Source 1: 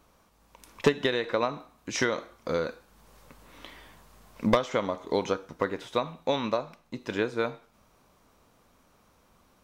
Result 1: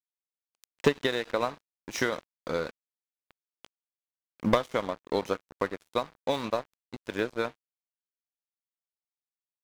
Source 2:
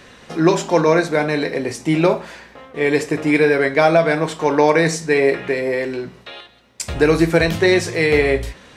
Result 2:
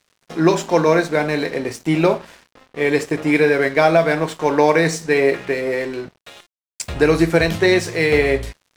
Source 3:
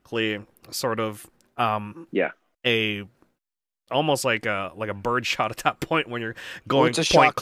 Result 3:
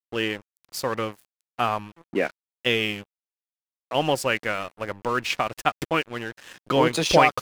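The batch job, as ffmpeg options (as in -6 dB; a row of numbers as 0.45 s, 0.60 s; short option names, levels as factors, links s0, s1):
-af "aeval=exprs='sgn(val(0))*max(abs(val(0))-0.0133,0)':c=same"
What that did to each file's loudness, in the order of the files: -1.5 LU, -0.5 LU, -1.0 LU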